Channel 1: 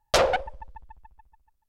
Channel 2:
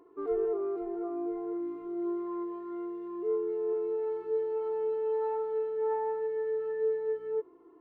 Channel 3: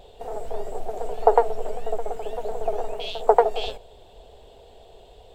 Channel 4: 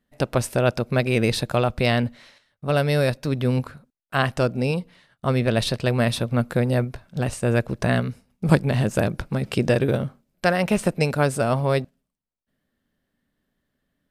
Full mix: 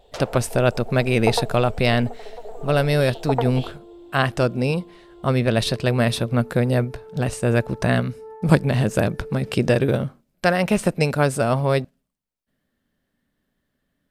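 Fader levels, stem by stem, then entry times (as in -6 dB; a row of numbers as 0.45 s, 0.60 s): -14.5 dB, -9.5 dB, -7.0 dB, +1.5 dB; 0.00 s, 2.40 s, 0.00 s, 0.00 s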